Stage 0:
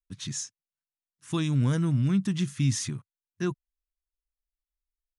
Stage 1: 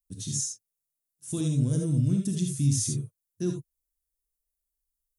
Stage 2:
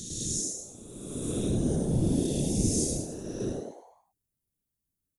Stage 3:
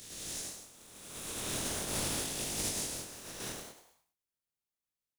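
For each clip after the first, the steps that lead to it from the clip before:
EQ curve 590 Hz 0 dB, 900 Hz -15 dB, 2000 Hz -16 dB, 9700 Hz +10 dB; limiter -20.5 dBFS, peak gain reduction 5 dB; non-linear reverb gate 0.1 s rising, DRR 2 dB
spectral swells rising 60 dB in 1.84 s; frequency-shifting echo 0.102 s, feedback 42%, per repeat +130 Hz, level -5 dB; whisperiser; gain -6 dB
spectral contrast lowered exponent 0.27; chorus 0.41 Hz, delay 19 ms, depth 6.5 ms; gain -6 dB

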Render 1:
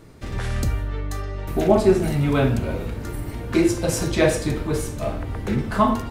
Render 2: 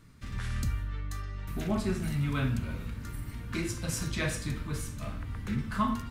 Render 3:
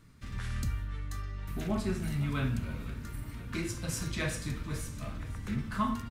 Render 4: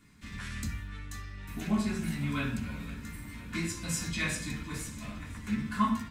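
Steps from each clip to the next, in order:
band shelf 520 Hz -11.5 dB; gain -8 dB
feedback echo 0.509 s, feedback 58%, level -18 dB; gain -2 dB
reverb RT60 0.30 s, pre-delay 3 ms, DRR -2.5 dB

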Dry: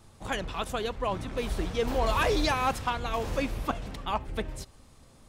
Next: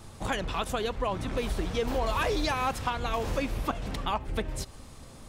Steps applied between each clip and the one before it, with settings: compressor 2.5:1, threshold -38 dBFS, peak gain reduction 11 dB; gain +8 dB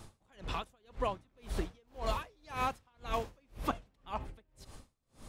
dB-linear tremolo 1.9 Hz, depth 37 dB; gain -2.5 dB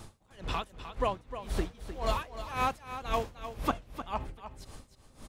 echo 0.306 s -11 dB; gain +4 dB

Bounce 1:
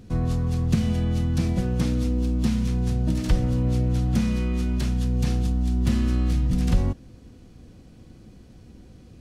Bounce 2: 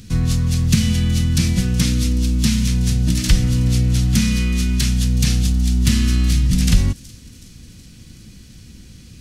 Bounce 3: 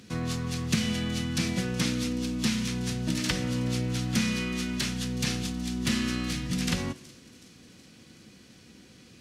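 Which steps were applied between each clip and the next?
EQ curve 190 Hz 0 dB, 340 Hz -7 dB, 700 Hz -12 dB, 2000 Hz +5 dB, 5900 Hz +11 dB; thin delay 0.372 s, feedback 60%, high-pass 4700 Hz, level -18 dB; gain +6.5 dB
HPF 540 Hz 12 dB/oct; tilt -3.5 dB/oct; on a send at -17.5 dB: reverb RT60 1.1 s, pre-delay 57 ms

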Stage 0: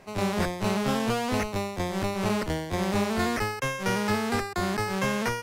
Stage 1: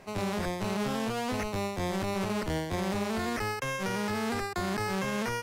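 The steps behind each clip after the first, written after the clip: limiter -23.5 dBFS, peak gain reduction 9 dB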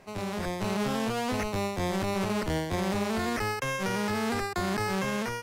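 AGC gain up to 4.5 dB; gain -2.5 dB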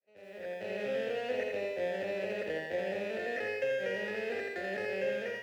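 opening faded in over 0.76 s; vowel filter e; lo-fi delay 83 ms, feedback 55%, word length 12-bit, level -4.5 dB; gain +5.5 dB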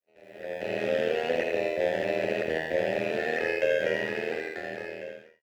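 ending faded out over 1.58 s; AGC gain up to 9 dB; AM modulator 81 Hz, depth 80%; gain +2 dB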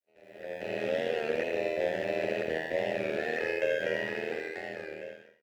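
echo 0.123 s -13.5 dB; record warp 33 1/3 rpm, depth 100 cents; gain -3.5 dB

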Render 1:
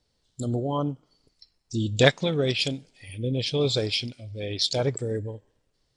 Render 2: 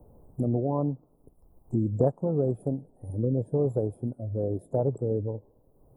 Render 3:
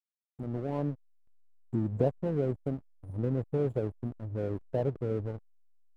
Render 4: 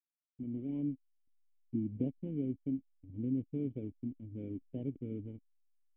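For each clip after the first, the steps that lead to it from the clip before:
inverse Chebyshev band-stop 2100–5900 Hz, stop band 60 dB; three-band squash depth 70%
opening faded in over 0.87 s; backlash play -33.5 dBFS; gain -3.5 dB
vocal tract filter i; gain +2 dB

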